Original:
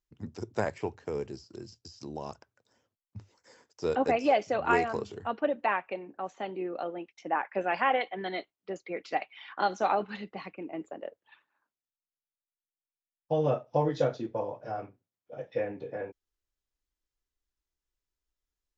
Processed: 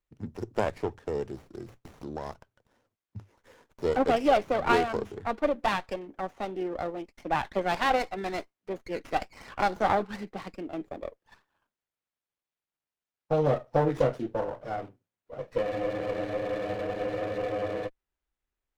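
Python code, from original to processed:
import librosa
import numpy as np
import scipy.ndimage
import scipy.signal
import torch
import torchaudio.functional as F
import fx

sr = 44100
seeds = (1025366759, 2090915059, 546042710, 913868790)

y = fx.spec_freeze(x, sr, seeds[0], at_s=15.64, hold_s=2.22)
y = fx.running_max(y, sr, window=9)
y = F.gain(torch.from_numpy(y), 2.5).numpy()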